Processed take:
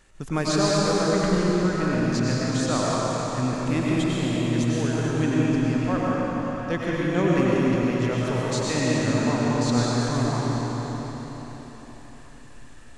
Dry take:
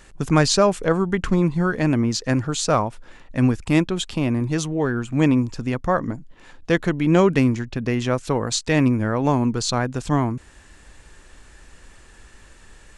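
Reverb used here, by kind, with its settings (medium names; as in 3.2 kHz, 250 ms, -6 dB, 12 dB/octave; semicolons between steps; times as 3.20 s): algorithmic reverb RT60 4.6 s, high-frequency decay 0.95×, pre-delay 65 ms, DRR -6.5 dB; trim -9.5 dB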